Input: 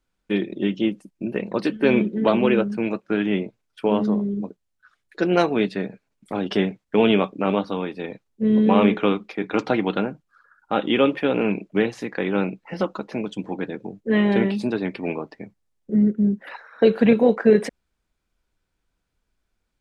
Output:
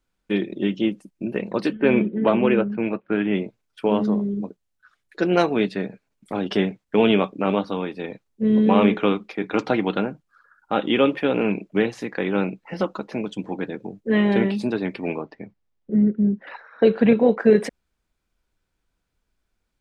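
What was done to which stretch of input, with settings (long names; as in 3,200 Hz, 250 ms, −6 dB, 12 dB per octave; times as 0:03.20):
0:01.73–0:03.35: low-pass filter 3,000 Hz 24 dB per octave
0:15.22–0:17.39: high-frequency loss of the air 120 metres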